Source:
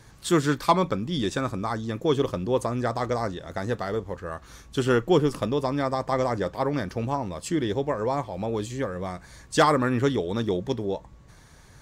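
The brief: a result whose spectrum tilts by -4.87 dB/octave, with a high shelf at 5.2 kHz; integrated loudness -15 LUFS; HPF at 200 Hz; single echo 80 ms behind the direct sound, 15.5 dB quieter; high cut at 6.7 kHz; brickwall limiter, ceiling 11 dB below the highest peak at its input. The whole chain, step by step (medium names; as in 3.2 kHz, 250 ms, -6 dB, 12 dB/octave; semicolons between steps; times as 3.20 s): high-pass 200 Hz; low-pass 6.7 kHz; treble shelf 5.2 kHz -8.5 dB; peak limiter -17.5 dBFS; delay 80 ms -15.5 dB; trim +15 dB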